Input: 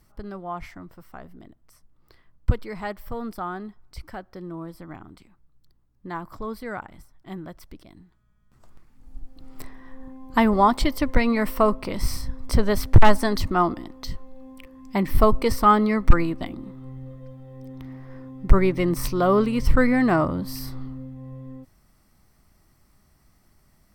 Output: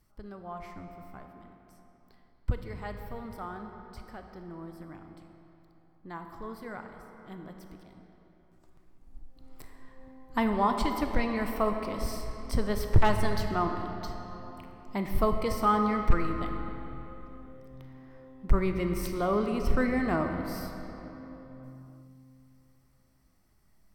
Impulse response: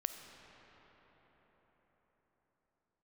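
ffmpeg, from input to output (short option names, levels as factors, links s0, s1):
-filter_complex "[0:a]asplit=3[s0][s1][s2];[s0]afade=t=out:st=0.71:d=0.02[s3];[s1]lowshelf=f=210:g=9,afade=t=in:st=0.71:d=0.02,afade=t=out:st=1.19:d=0.02[s4];[s2]afade=t=in:st=1.19:d=0.02[s5];[s3][s4][s5]amix=inputs=3:normalize=0[s6];[1:a]atrim=start_sample=2205,asetrate=70560,aresample=44100[s7];[s6][s7]afir=irnorm=-1:irlink=0,volume=0.668"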